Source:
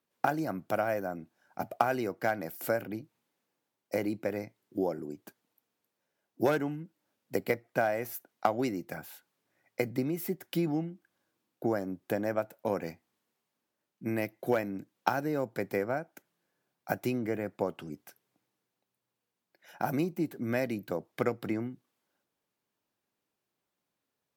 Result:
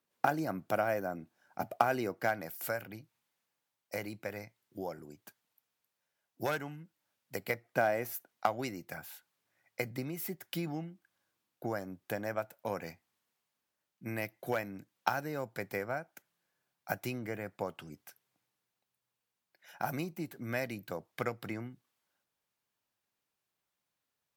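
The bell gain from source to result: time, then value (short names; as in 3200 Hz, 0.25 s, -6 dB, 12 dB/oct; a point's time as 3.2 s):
bell 310 Hz 2.1 oct
2.16 s -2.5 dB
2.69 s -12 dB
7.4 s -12 dB
7.89 s -0.5 dB
8.55 s -9 dB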